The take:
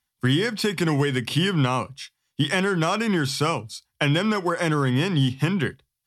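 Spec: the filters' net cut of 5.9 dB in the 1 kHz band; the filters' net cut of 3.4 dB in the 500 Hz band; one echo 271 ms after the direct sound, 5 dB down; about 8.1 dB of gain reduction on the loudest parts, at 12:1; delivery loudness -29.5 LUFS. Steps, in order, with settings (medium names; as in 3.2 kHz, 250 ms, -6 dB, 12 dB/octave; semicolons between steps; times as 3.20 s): peaking EQ 500 Hz -3 dB; peaking EQ 1 kHz -7 dB; compression 12:1, threshold -25 dBFS; delay 271 ms -5 dB; trim -0.5 dB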